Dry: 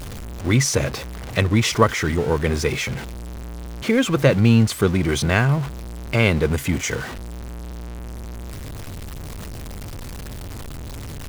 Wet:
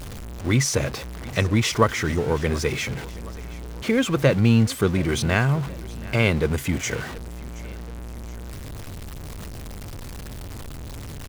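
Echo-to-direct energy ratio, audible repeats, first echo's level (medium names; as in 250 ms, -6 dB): -19.0 dB, 2, -20.0 dB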